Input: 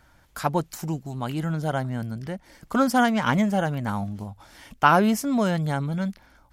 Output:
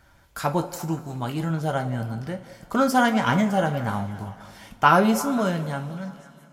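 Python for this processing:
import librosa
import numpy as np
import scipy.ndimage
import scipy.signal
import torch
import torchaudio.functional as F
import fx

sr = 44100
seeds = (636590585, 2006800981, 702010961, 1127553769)

y = fx.fade_out_tail(x, sr, length_s=1.35)
y = fx.echo_stepped(y, sr, ms=174, hz=580.0, octaves=0.7, feedback_pct=70, wet_db=-12.0)
y = fx.rev_double_slope(y, sr, seeds[0], early_s=0.24, late_s=2.9, knee_db=-21, drr_db=5.0)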